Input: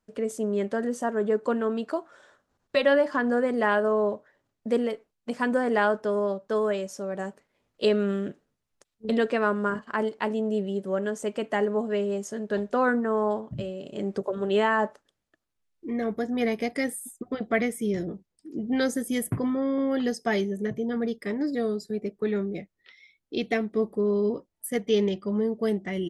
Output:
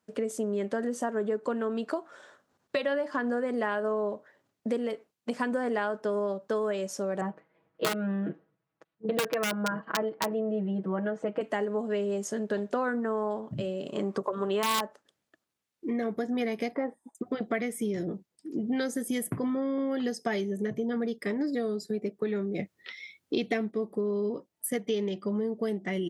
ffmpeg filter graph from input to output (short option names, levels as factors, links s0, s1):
-filter_complex "[0:a]asettb=1/sr,asplit=3[s0][s1][s2];[s0]atrim=end=7.214[s3];[s1]atrim=start=7.21:end=11.41,asetpts=PTS-STARTPTS,afade=t=in:d=0.004:c=qsin,afade=t=out:st=4.196:d=0.004:c=qsin,lowpass=1800,aeval=exprs='(mod(6.31*val(0)+1,2)-1)/6.31':c=same,aecho=1:1:6.2:0.99,atrim=end_sample=185220[s4];[s2]atrim=start=11.406[s5];[s3][s4]acrossfade=d=0.004:c1=hsin:c2=qsin[s6];[s6][s5]acrossfade=d=0.004:c1=qsin:c2=hsin,asettb=1/sr,asplit=3[s7][s8][s9];[s7]atrim=end=13.884[s10];[s8]atrim=start=13.88:end=14.82,asetpts=PTS-STARTPTS,afade=t=in:d=0.004:c=qsin,afade=t=out:st=0.936:d=0.004:c=qsin,equalizer=f=1100:t=o:w=0.45:g=13.5,aeval=exprs='(mod(3.35*val(0)+1,2)-1)/3.35':c=same[s11];[s9]atrim=start=14.816[s12];[s10][s11]acrossfade=d=0.004:c1=hsin:c2=qsin[s13];[s13][s12]acrossfade=d=0.004:c1=qsin:c2=hsin,asettb=1/sr,asplit=3[s14][s15][s16];[s14]atrim=end=16.754[s17];[s15]atrim=start=16.75:end=17.15,asetpts=PTS-STARTPTS,afade=t=in:d=0.004:c=qsin,afade=t=out:st=0.396:d=0.004:c=qsin,lowpass=f=970:t=q:w=3.9,equalizer=f=110:w=1.2:g=-14[s18];[s16]atrim=start=17.146[s19];[s17][s18]acrossfade=d=0.004:c1=hsin:c2=qsin[s20];[s20][s19]acrossfade=d=0.004:c1=qsin:c2=hsin,asettb=1/sr,asplit=3[s21][s22][s23];[s21]atrim=end=22.594[s24];[s22]atrim=start=22.59:end=23.71,asetpts=PTS-STARTPTS,afade=t=in:d=0.004:c=qsin,afade=t=out:st=1.116:d=0.004:c=qsin,equalizer=f=90:w=1.2:g=5,acontrast=88[s25];[s23]atrim=start=23.706[s26];[s24][s25]acrossfade=d=0.004:c1=hsin:c2=qsin[s27];[s27][s26]acrossfade=d=0.004:c1=qsin:c2=hsin,acompressor=threshold=0.0316:ratio=5,highpass=130,volume=1.41"